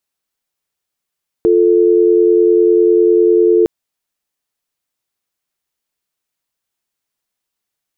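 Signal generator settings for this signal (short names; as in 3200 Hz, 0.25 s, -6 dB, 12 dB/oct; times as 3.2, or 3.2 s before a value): call progress tone dial tone, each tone -10 dBFS 2.21 s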